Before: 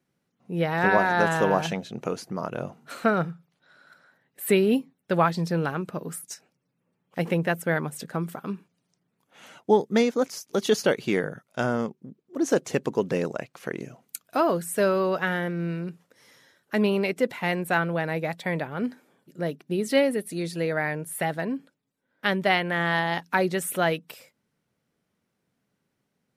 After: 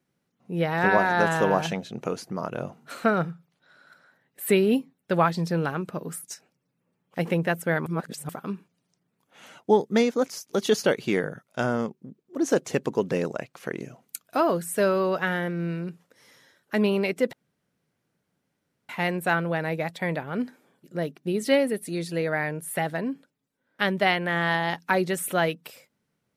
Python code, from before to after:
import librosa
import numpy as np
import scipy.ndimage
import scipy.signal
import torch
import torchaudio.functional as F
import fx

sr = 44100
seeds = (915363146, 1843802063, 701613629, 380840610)

y = fx.edit(x, sr, fx.reverse_span(start_s=7.86, length_s=0.43),
    fx.insert_room_tone(at_s=17.33, length_s=1.56), tone=tone)